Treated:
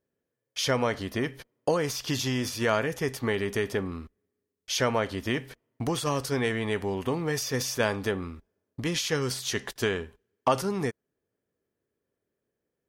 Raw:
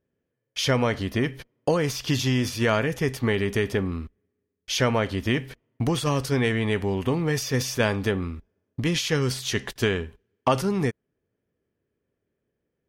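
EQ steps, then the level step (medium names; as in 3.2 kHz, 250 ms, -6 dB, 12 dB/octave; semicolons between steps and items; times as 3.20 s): bass shelf 290 Hz -9 dB; peaking EQ 2.6 kHz -4.5 dB 1.3 oct; 0.0 dB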